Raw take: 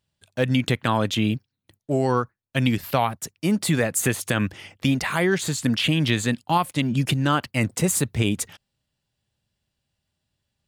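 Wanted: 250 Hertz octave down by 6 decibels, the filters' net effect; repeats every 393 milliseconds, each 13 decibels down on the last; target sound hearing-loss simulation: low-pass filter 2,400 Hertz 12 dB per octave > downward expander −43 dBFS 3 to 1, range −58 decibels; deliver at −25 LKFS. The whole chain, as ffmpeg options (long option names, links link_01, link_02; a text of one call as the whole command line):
ffmpeg -i in.wav -af "lowpass=2400,equalizer=frequency=250:width_type=o:gain=-8,aecho=1:1:393|786|1179:0.224|0.0493|0.0108,agate=range=-58dB:threshold=-43dB:ratio=3,volume=1.5dB" out.wav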